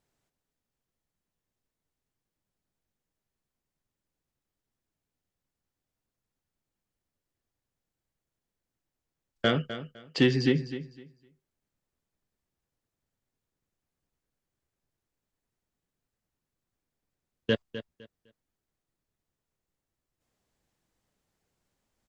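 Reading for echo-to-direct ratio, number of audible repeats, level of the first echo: −12.5 dB, 2, −12.5 dB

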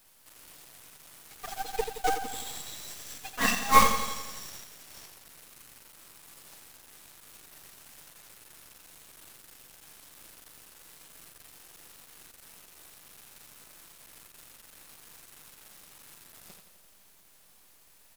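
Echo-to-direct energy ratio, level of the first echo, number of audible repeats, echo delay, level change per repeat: −7.0 dB, −9.0 dB, 6, 86 ms, −4.5 dB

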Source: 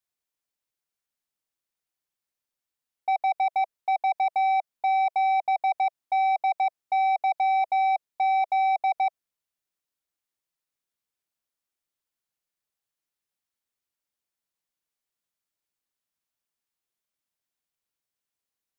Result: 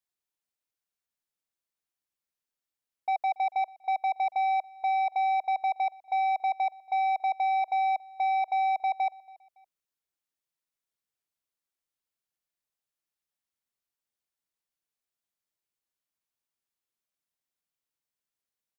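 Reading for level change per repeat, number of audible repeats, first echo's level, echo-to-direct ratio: −8.5 dB, 2, −23.5 dB, −23.0 dB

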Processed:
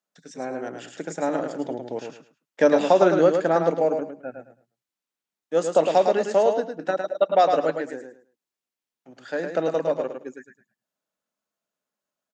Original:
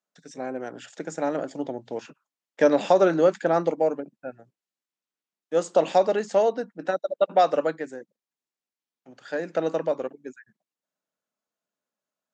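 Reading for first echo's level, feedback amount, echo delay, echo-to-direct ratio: −6.0 dB, 22%, 107 ms, −6.0 dB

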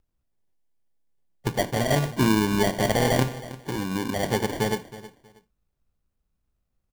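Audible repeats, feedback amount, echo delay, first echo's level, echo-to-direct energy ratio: 2, 23%, 319 ms, −16.5 dB, −16.5 dB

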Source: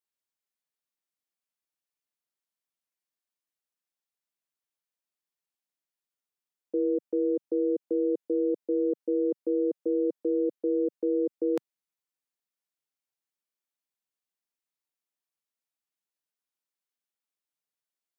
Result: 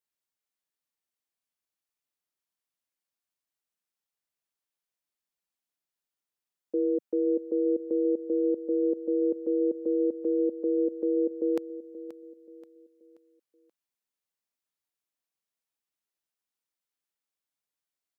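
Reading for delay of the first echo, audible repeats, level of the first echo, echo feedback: 530 ms, 3, −14.5 dB, 39%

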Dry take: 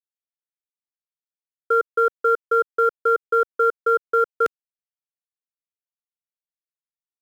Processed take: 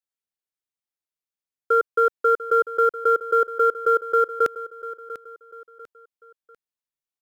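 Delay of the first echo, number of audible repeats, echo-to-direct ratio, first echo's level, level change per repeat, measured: 695 ms, 3, −14.5 dB, −15.0 dB, −8.5 dB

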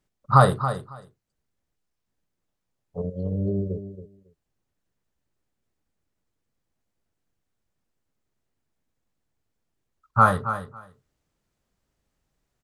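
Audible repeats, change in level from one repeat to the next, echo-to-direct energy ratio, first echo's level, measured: 2, −16.5 dB, −11.0 dB, −11.0 dB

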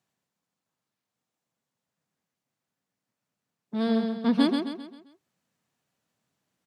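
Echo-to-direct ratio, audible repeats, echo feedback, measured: −4.0 dB, 5, 43%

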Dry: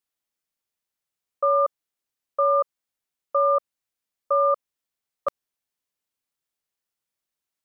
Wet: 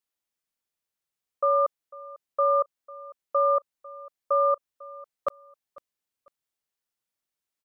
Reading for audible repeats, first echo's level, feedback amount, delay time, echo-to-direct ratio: 2, −20.5 dB, 30%, 498 ms, −20.0 dB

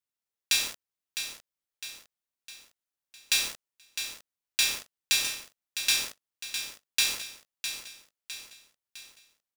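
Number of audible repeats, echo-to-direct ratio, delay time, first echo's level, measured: 5, −8.0 dB, 657 ms, −9.0 dB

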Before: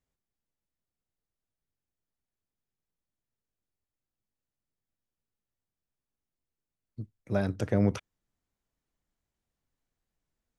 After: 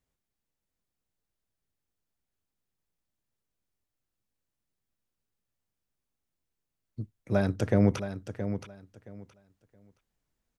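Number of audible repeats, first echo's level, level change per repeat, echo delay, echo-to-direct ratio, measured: 2, −10.0 dB, −14.0 dB, 671 ms, −10.0 dB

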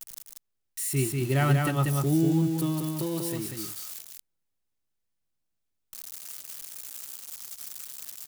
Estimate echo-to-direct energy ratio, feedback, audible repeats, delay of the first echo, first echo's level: −3.5 dB, repeats not evenly spaced, 1, 190 ms, −3.5 dB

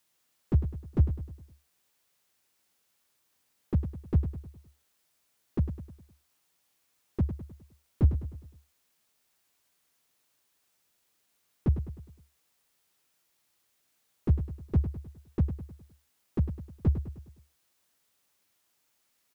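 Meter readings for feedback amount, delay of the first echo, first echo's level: 48%, 103 ms, −10.0 dB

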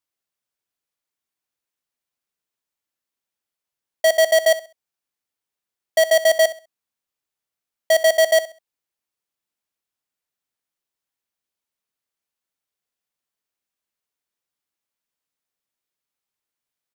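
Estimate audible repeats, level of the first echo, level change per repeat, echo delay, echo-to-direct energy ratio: 2, −16.0 dB, −11.5 dB, 66 ms, −15.5 dB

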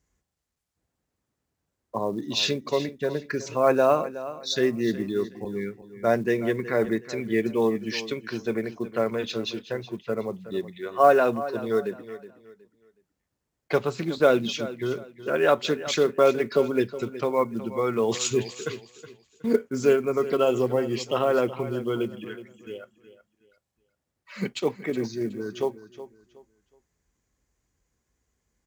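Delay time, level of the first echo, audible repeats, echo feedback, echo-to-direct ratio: 369 ms, −14.5 dB, 2, 28%, −14.0 dB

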